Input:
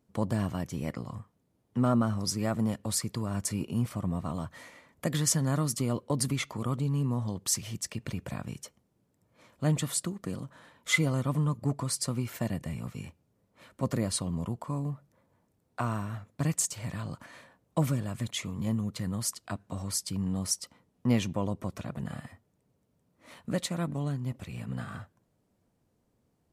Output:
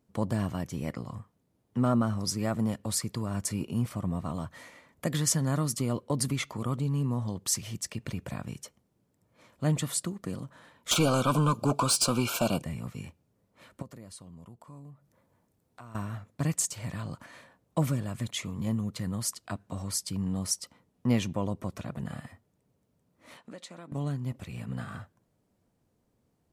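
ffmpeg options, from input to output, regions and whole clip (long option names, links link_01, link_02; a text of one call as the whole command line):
ffmpeg -i in.wav -filter_complex "[0:a]asettb=1/sr,asplit=3[link_01][link_02][link_03];[link_01]atrim=end=10.914[link_04];[link_02]atrim=start=10.91:end=12.63,asetpts=PTS-STARTPTS,afade=type=in:duration=0.004:curve=qsin,afade=type=out:start_time=1.716:duration=0.004:curve=qsin,asplit=2[link_05][link_06];[link_06]highpass=frequency=720:poles=1,volume=22dB,asoftclip=type=tanh:threshold=-13dB[link_07];[link_05][link_07]amix=inputs=2:normalize=0,lowpass=frequency=6200:poles=1,volume=-6dB,asuperstop=centerf=1900:order=12:qfactor=2.8[link_08];[link_03]atrim=start=12.626[link_09];[link_04][link_08]acrossfade=duration=0.004:curve1=hsin:curve2=qsin[link_10];[link_10][link_09]acrossfade=duration=0.004:curve1=qsin:curve2=hsin,asettb=1/sr,asplit=3[link_11][link_12][link_13];[link_11]atrim=end=13.824[link_14];[link_12]atrim=start=13.82:end=15.95,asetpts=PTS-STARTPTS,afade=type=in:duration=0.004:curve=qsin,afade=type=out:start_time=2.126:duration=0.004:curve=qsin,highshelf=frequency=7800:gain=4,acompressor=threshold=-58dB:ratio=2:attack=3.2:release=140:knee=1:detection=peak[link_15];[link_13]atrim=start=15.946[link_16];[link_14][link_15]acrossfade=duration=0.004:curve1=hsin:curve2=qsin[link_17];[link_17][link_16]acrossfade=duration=0.004:curve1=qsin:curve2=hsin,asettb=1/sr,asplit=3[link_18][link_19][link_20];[link_18]atrim=end=23.374[link_21];[link_19]atrim=start=23.37:end=23.92,asetpts=PTS-STARTPTS,afade=type=in:duration=0.004:curve=qsin,afade=type=out:start_time=0.546:duration=0.004:curve=qsin,highpass=270,lowpass=7800,acompressor=threshold=-44dB:ratio=3:attack=3.2:release=140:knee=1:detection=peak[link_22];[link_20]atrim=start=23.916[link_23];[link_21][link_22]acrossfade=duration=0.004:curve1=hsin:curve2=qsin[link_24];[link_24][link_23]acrossfade=duration=0.004:curve1=qsin:curve2=hsin" out.wav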